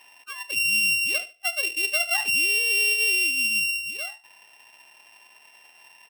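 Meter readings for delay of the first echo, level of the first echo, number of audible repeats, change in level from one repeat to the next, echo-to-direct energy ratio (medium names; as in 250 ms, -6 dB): 74 ms, -17.0 dB, 2, -13.5 dB, -17.0 dB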